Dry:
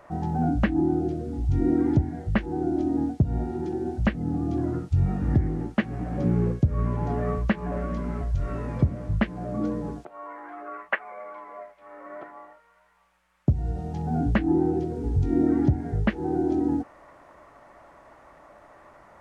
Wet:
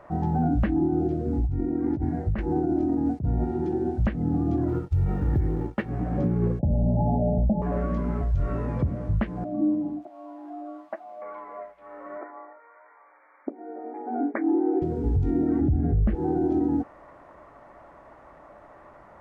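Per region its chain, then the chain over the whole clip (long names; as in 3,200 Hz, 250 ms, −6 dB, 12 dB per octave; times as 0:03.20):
0:01.25–0:03.45: parametric band 3,300 Hz −5.5 dB 0.32 octaves + compressor whose output falls as the input rises −27 dBFS + one half of a high-frequency compander decoder only
0:04.68–0:05.89: mu-law and A-law mismatch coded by A + comb filter 2.2 ms, depth 42%
0:06.59–0:07.62: leveller curve on the samples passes 3 + Chebyshev low-pass with heavy ripple 860 Hz, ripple 9 dB + comb filter 1.3 ms, depth 44%
0:09.44–0:11.22: spike at every zero crossing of −23 dBFS + pair of resonant band-passes 450 Hz, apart 1.1 octaves + low-shelf EQ 410 Hz +8.5 dB
0:12.18–0:14.82: upward compression, threshold −44 dBFS + linear-phase brick-wall band-pass 240–2,400 Hz
0:15.61–0:16.15: Butterworth band-reject 940 Hz, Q 5.8 + spectral tilt −3.5 dB per octave
whole clip: high-shelf EQ 2,700 Hz −12 dB; brickwall limiter −19 dBFS; level +3 dB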